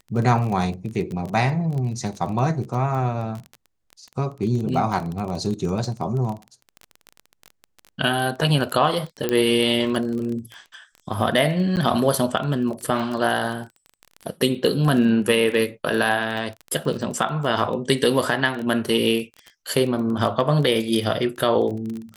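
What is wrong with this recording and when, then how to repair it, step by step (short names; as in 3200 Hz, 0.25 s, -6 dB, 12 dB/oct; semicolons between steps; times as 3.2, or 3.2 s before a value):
crackle 20/s -27 dBFS
9.29 pop -8 dBFS
11.76–11.77 gap 9.1 ms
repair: de-click; interpolate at 11.76, 9.1 ms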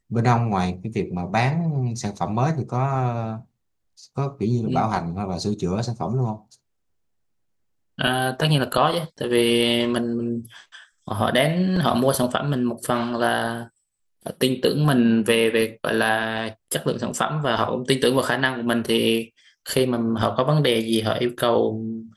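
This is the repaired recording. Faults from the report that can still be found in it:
none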